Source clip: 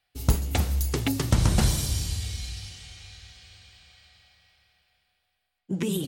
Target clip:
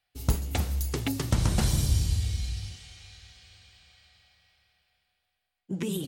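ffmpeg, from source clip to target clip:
-filter_complex "[0:a]asettb=1/sr,asplit=3[a][b][c];[a]atrim=end=1.734[d];[b]atrim=start=1.73:end=2.76,asetpts=PTS-STARTPTS,afade=t=in:d=0.004:c=qsin,afade=t=out:st=1.026:d=0.004:c=qsin,lowshelf=f=350:g=8[e];[c]atrim=start=2.756[f];[d][e]acrossfade=d=0.004:c1=hsin:c2=qsin[g];[g][f]acrossfade=d=0.004:c1=qsin:c2=hsin,volume=-3.5dB"

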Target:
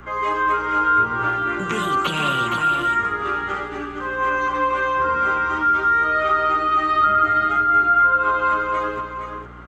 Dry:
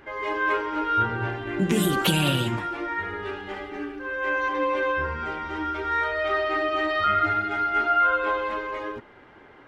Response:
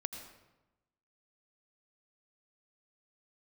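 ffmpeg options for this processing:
-filter_complex "[0:a]aeval=exprs='val(0)+0.00562*(sin(2*PI*60*n/s)+sin(2*PI*2*60*n/s)/2+sin(2*PI*3*60*n/s)/3+sin(2*PI*4*60*n/s)/4+sin(2*PI*5*60*n/s)/5)':c=same,superequalizer=10b=3.55:15b=2.51,acrossover=split=120|480[a][b][c];[a]acompressor=threshold=-49dB:ratio=4[d];[b]acompressor=threshold=-35dB:ratio=4[e];[c]acompressor=threshold=-21dB:ratio=4[f];[d][e][f]amix=inputs=3:normalize=0,aecho=1:1:467:0.447,acrossover=split=4200[g][h];[h]acompressor=threshold=-48dB:ratio=4:attack=1:release=60[i];[g][i]amix=inputs=2:normalize=0,volume=3.5dB"

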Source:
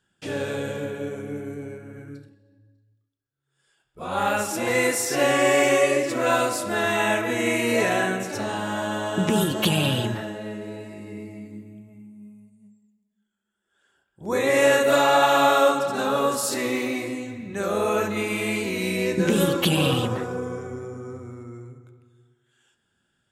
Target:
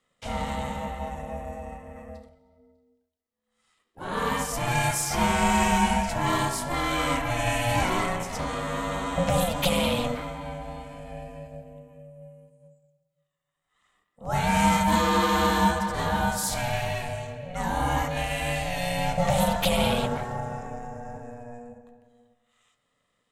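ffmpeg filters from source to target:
-filter_complex "[0:a]acrossover=split=740|3200[a][b][c];[b]asoftclip=type=tanh:threshold=-25.5dB[d];[a][d][c]amix=inputs=3:normalize=0,aeval=exprs='val(0)*sin(2*PI*360*n/s)':c=same,volume=1dB"

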